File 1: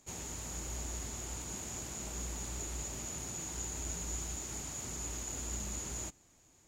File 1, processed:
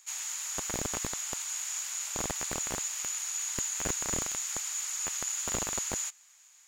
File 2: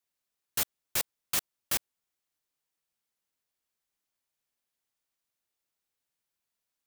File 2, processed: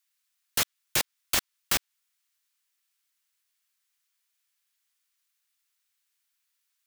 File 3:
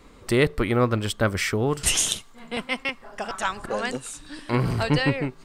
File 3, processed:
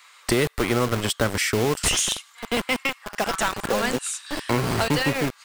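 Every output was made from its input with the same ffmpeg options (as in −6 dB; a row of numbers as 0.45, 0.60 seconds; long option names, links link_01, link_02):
-filter_complex "[0:a]acrossover=split=240|6800[link_01][link_02][link_03];[link_01]acompressor=threshold=-38dB:ratio=4[link_04];[link_02]acompressor=threshold=-30dB:ratio=4[link_05];[link_03]acompressor=threshold=-36dB:ratio=4[link_06];[link_04][link_05][link_06]amix=inputs=3:normalize=0,acrossover=split=1100[link_07][link_08];[link_07]acrusher=bits=5:mix=0:aa=0.000001[link_09];[link_08]asoftclip=type=tanh:threshold=-21dB[link_10];[link_09][link_10]amix=inputs=2:normalize=0,volume=8.5dB"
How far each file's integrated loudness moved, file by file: +7.5, +3.5, +1.0 LU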